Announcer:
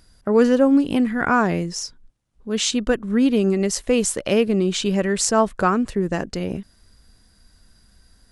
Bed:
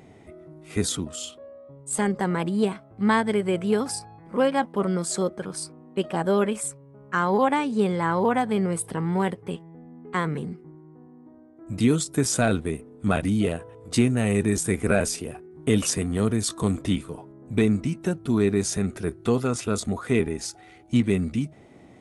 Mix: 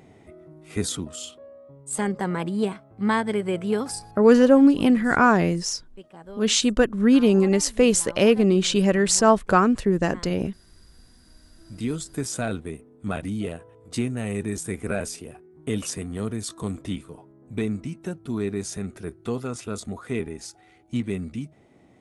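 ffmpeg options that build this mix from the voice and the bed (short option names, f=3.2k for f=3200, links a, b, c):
-filter_complex "[0:a]adelay=3900,volume=1dB[a];[1:a]volume=11.5dB,afade=t=out:st=4.16:d=0.21:silence=0.133352,afade=t=in:st=11.03:d=1.11:silence=0.223872[b];[a][b]amix=inputs=2:normalize=0"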